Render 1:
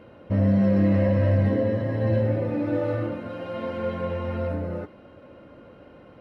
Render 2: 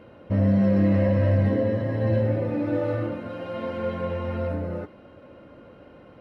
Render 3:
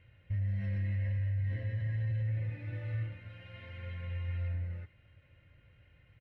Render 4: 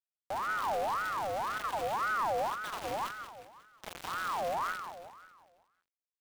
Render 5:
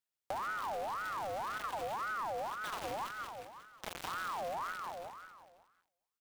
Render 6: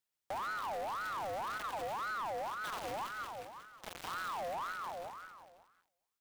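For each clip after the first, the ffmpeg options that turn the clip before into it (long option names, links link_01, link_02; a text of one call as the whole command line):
ffmpeg -i in.wav -af anull out.wav
ffmpeg -i in.wav -af "firequalizer=gain_entry='entry(110,0);entry(220,-25);entry(1200,-21);entry(1900,-1);entry(4900,-14)':delay=0.05:min_phase=1,alimiter=level_in=1dB:limit=-24dB:level=0:latency=1:release=37,volume=-1dB,volume=-3dB" out.wav
ffmpeg -i in.wav -af "acrusher=bits=5:mix=0:aa=0.000001,aecho=1:1:181|362|543|724|905|1086:0.355|0.174|0.0852|0.0417|0.0205|0.01,aeval=exprs='val(0)*sin(2*PI*1000*n/s+1000*0.4/1.9*sin(2*PI*1.9*n/s))':channel_layout=same" out.wav
ffmpeg -i in.wav -filter_complex "[0:a]acompressor=threshold=-39dB:ratio=6,asplit=2[link_01][link_02];[link_02]adelay=425.7,volume=-27dB,highshelf=frequency=4000:gain=-9.58[link_03];[link_01][link_03]amix=inputs=2:normalize=0,volume=3dB" out.wav
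ffmpeg -i in.wav -af "asoftclip=type=tanh:threshold=-35dB,volume=2dB" out.wav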